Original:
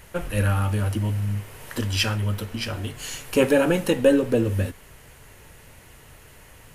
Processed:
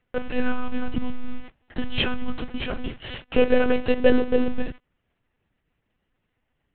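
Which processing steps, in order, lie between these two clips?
gate -35 dBFS, range -28 dB; in parallel at -9.5 dB: sample-rate reducer 1.2 kHz, jitter 0%; on the sum: monotone LPC vocoder at 8 kHz 250 Hz

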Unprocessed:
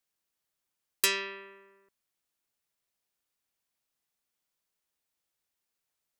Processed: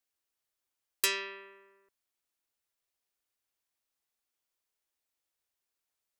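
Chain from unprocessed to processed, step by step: peaking EQ 170 Hz -14.5 dB 0.43 oct; trim -2.5 dB

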